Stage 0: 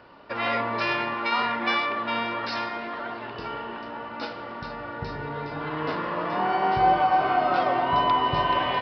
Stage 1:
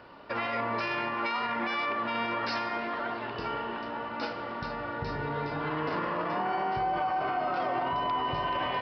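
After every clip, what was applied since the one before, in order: dynamic bell 3.7 kHz, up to -5 dB, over -51 dBFS, Q 4.1; peak limiter -22.5 dBFS, peak gain reduction 11.5 dB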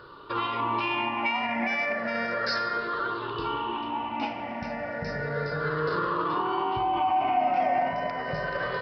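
drifting ripple filter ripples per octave 0.61, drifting -0.33 Hz, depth 16 dB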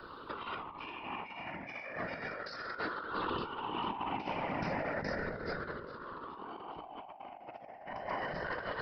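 whisper effect; compressor with a negative ratio -33 dBFS, ratio -0.5; trim -6.5 dB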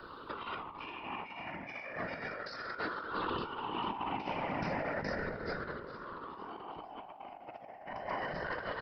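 feedback delay 453 ms, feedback 53%, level -20.5 dB

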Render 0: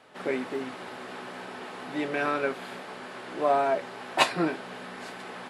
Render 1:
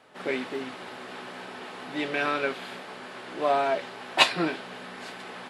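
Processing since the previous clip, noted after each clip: dynamic bell 3.4 kHz, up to +8 dB, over -48 dBFS, Q 0.88; trim -1 dB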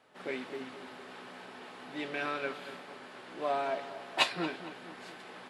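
filtered feedback delay 229 ms, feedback 56%, low-pass 2 kHz, level -12 dB; trim -8 dB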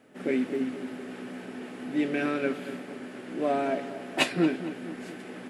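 graphic EQ 250/1000/4000 Hz +9/-11/-10 dB; trim +8 dB

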